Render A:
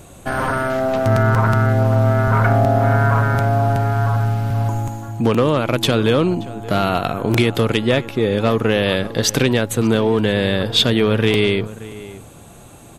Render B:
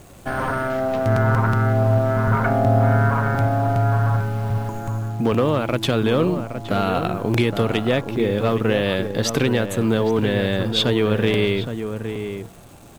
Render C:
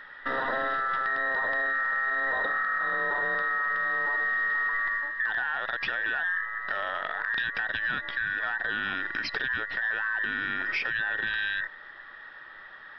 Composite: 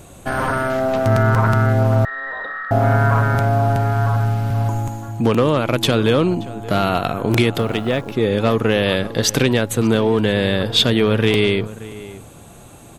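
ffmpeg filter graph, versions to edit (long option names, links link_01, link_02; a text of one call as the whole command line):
ffmpeg -i take0.wav -i take1.wav -i take2.wav -filter_complex "[0:a]asplit=3[link_01][link_02][link_03];[link_01]atrim=end=2.052[link_04];[2:a]atrim=start=2.048:end=2.712[link_05];[link_02]atrim=start=2.708:end=7.582[link_06];[1:a]atrim=start=7.578:end=8.122[link_07];[link_03]atrim=start=8.118[link_08];[link_04][link_05]acrossfade=duration=0.004:curve1=hsin:curve2=hsin[link_09];[link_09][link_06]acrossfade=duration=0.004:curve1=hsin:curve2=hsin[link_10];[link_10][link_07]acrossfade=duration=0.004:curve1=hsin:curve2=hsin[link_11];[link_11][link_08]acrossfade=duration=0.004:curve1=hsin:curve2=hsin" out.wav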